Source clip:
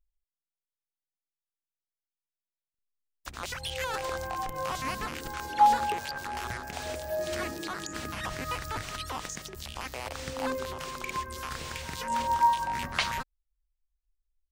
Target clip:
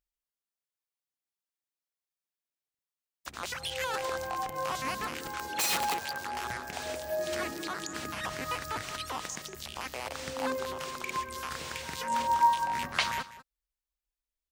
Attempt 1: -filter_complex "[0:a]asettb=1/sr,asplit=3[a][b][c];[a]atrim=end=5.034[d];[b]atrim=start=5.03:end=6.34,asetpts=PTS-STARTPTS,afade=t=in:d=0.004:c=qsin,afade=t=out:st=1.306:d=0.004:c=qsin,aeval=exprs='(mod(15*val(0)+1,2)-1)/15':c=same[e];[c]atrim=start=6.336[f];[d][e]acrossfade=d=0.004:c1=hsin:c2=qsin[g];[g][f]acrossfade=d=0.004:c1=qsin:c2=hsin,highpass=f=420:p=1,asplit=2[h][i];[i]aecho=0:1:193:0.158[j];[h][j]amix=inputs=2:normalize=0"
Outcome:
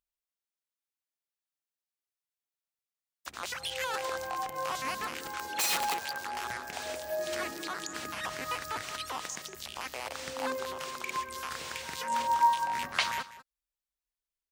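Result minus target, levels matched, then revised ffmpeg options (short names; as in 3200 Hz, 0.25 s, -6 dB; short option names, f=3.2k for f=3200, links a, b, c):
125 Hz band -6.0 dB
-filter_complex "[0:a]asettb=1/sr,asplit=3[a][b][c];[a]atrim=end=5.034[d];[b]atrim=start=5.03:end=6.34,asetpts=PTS-STARTPTS,afade=t=in:d=0.004:c=qsin,afade=t=out:st=1.306:d=0.004:c=qsin,aeval=exprs='(mod(15*val(0)+1,2)-1)/15':c=same[e];[c]atrim=start=6.336[f];[d][e]acrossfade=d=0.004:c1=hsin:c2=qsin[g];[g][f]acrossfade=d=0.004:c1=qsin:c2=hsin,highpass=f=170:p=1,asplit=2[h][i];[i]aecho=0:1:193:0.158[j];[h][j]amix=inputs=2:normalize=0"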